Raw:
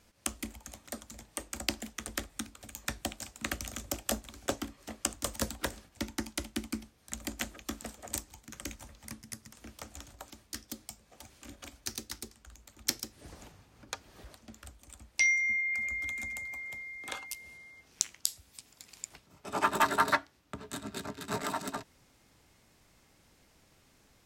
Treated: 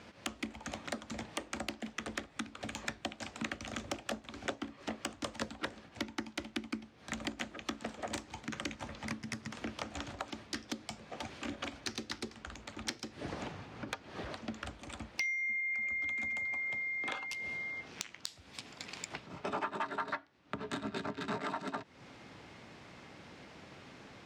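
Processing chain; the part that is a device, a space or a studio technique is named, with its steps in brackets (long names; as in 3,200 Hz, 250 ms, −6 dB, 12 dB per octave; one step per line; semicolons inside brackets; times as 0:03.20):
AM radio (band-pass filter 120–3,400 Hz; downward compressor 6 to 1, threshold −50 dBFS, peak gain reduction 26 dB; soft clipping −33.5 dBFS, distortion −23 dB)
level +14 dB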